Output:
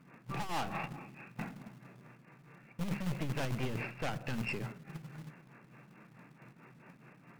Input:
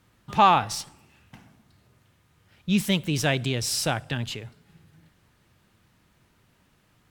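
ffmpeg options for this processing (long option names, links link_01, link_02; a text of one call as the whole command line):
ffmpeg -i in.wav -filter_complex "[0:a]afftfilt=real='re*between(b*sr/4096,120,2900)':imag='im*between(b*sr/4096,120,2900)':win_size=4096:overlap=0.75,aeval=exprs='(tanh(56.2*val(0)+0.45)-tanh(0.45))/56.2':channel_layout=same,areverse,acompressor=threshold=-43dB:ratio=16,areverse,bandreject=frequency=50:width_type=h:width=6,bandreject=frequency=100:width_type=h:width=6,bandreject=frequency=150:width_type=h:width=6,bandreject=frequency=200:width_type=h:width=6,acrossover=split=280[link_01][link_02];[link_01]acrusher=bits=2:mode=log:mix=0:aa=0.000001[link_03];[link_02]tremolo=f=4.8:d=0.8[link_04];[link_03][link_04]amix=inputs=2:normalize=0,asetrate=42336,aresample=44100,volume=12dB" out.wav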